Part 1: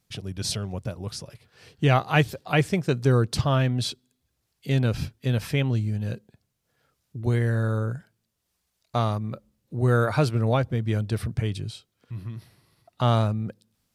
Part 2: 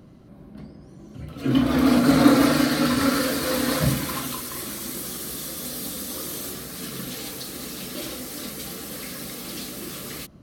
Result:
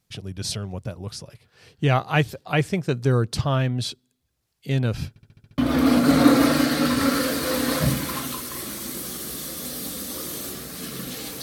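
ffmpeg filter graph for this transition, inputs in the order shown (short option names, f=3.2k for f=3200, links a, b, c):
-filter_complex "[0:a]apad=whole_dur=11.42,atrim=end=11.42,asplit=7[a][b][c][d][e][f][g];[a]atrim=end=5.162[h];[b]atrim=start=5.088:end=5.162[i];[c]atrim=start=5.088:end=5.162[j];[d]atrim=start=5.088:end=5.162[k];[e]atrim=start=5.088:end=5.162[l];[f]atrim=start=5.088:end=5.162[m];[g]atrim=start=5.088:end=5.162[n];[1:a]atrim=start=1.578:end=7.42[o];[h][i]acrossfade=d=0.004:c1=hsin:c2=hsin[p];[p][j]acrossfade=d=0.004:c1=hsin:c2=hsin[q];[q][k]acrossfade=d=0.004:c1=hsin:c2=hsin[r];[r][l]acrossfade=d=0.004:c1=hsin:c2=hsin[s];[s][m]acrossfade=d=0.004:c1=hsin:c2=hsin[t];[t][n]acrossfade=d=0.004:c1=hsin:c2=hsin[u];[u][o]acrossfade=d=0.004:c1=hsin:c2=hsin"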